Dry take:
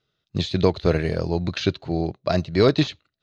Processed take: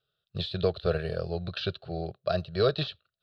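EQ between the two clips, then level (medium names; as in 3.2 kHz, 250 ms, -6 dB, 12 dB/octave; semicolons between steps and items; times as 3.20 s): bass shelf 83 Hz -6 dB; static phaser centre 1.4 kHz, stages 8; -4.0 dB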